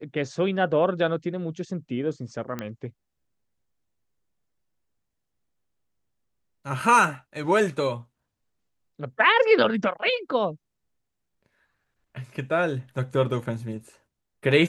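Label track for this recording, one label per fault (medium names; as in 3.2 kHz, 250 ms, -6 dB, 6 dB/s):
2.590000	2.590000	pop -17 dBFS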